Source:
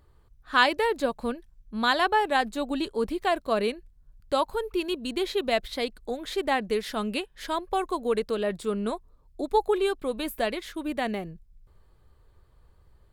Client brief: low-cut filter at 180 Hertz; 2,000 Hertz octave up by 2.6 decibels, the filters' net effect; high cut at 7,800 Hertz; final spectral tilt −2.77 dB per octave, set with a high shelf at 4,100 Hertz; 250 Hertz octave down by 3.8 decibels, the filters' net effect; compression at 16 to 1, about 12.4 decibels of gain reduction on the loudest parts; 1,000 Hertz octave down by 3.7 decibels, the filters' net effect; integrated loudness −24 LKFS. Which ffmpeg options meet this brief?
ffmpeg -i in.wav -af "highpass=180,lowpass=7800,equalizer=frequency=250:width_type=o:gain=-3.5,equalizer=frequency=1000:width_type=o:gain=-6,equalizer=frequency=2000:width_type=o:gain=4,highshelf=frequency=4100:gain=8,acompressor=threshold=-26dB:ratio=16,volume=8.5dB" out.wav

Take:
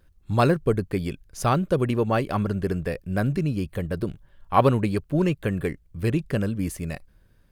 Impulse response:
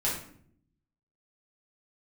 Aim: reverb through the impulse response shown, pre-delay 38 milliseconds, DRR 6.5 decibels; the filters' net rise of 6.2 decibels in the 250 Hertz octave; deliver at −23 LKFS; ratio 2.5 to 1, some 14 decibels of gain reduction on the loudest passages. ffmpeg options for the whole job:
-filter_complex "[0:a]equalizer=frequency=250:width_type=o:gain=8.5,acompressor=threshold=-33dB:ratio=2.5,asplit=2[link_01][link_02];[1:a]atrim=start_sample=2205,adelay=38[link_03];[link_02][link_03]afir=irnorm=-1:irlink=0,volume=-14dB[link_04];[link_01][link_04]amix=inputs=2:normalize=0,volume=8.5dB"

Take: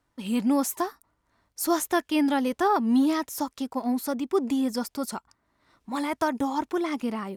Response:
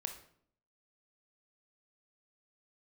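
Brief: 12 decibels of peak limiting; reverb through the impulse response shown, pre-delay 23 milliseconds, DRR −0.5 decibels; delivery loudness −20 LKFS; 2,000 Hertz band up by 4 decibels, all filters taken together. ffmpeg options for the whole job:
-filter_complex "[0:a]equalizer=frequency=2000:width_type=o:gain=5,alimiter=limit=-22.5dB:level=0:latency=1,asplit=2[link_01][link_02];[1:a]atrim=start_sample=2205,adelay=23[link_03];[link_02][link_03]afir=irnorm=-1:irlink=0,volume=1.5dB[link_04];[link_01][link_04]amix=inputs=2:normalize=0,volume=8dB"

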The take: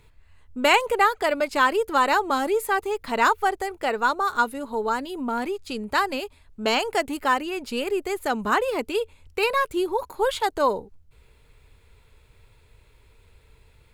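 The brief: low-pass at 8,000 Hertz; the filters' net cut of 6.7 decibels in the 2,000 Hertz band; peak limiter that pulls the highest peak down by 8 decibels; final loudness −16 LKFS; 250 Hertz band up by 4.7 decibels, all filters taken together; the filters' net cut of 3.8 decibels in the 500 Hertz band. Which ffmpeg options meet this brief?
ffmpeg -i in.wav -af "lowpass=8000,equalizer=frequency=250:width_type=o:gain=8,equalizer=frequency=500:width_type=o:gain=-7,equalizer=frequency=2000:width_type=o:gain=-9,volume=12.5dB,alimiter=limit=-5.5dB:level=0:latency=1" out.wav

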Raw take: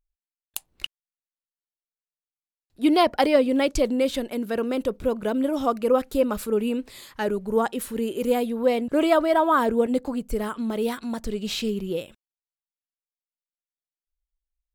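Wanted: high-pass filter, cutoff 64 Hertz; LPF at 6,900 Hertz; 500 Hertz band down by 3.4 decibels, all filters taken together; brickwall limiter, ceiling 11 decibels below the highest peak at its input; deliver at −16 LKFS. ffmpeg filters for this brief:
ffmpeg -i in.wav -af "highpass=64,lowpass=6900,equalizer=frequency=500:width_type=o:gain=-4,volume=12.5dB,alimiter=limit=-6.5dB:level=0:latency=1" out.wav

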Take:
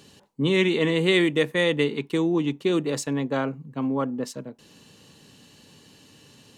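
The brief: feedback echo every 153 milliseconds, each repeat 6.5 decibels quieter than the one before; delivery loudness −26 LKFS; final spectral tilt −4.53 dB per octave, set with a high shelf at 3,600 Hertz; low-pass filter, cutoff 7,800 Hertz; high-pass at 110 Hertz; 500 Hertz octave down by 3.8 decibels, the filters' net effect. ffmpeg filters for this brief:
ffmpeg -i in.wav -af "highpass=110,lowpass=7800,equalizer=frequency=500:width_type=o:gain=-5,highshelf=frequency=3600:gain=-6,aecho=1:1:153|306|459|612|765|918:0.473|0.222|0.105|0.0491|0.0231|0.0109,volume=-0.5dB" out.wav

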